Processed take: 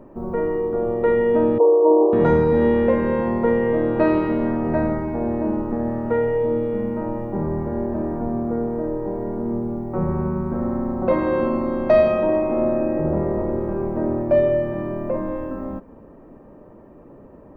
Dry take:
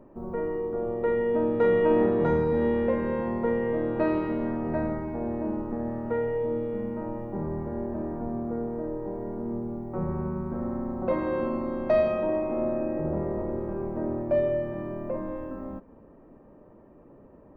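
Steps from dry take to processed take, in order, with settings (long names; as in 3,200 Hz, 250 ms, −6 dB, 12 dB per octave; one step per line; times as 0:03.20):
0:01.58–0:02.13: linear-phase brick-wall band-pass 270–1,200 Hz
level +7.5 dB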